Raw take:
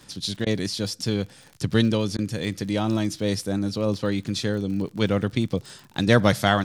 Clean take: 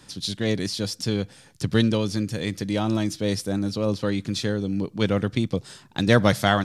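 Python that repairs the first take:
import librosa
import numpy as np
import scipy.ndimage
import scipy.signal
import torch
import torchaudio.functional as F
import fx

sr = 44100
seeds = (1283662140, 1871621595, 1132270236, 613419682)

y = fx.fix_declick_ar(x, sr, threshold=6.5)
y = fx.fix_interpolate(y, sr, at_s=(0.45, 2.17), length_ms=14.0)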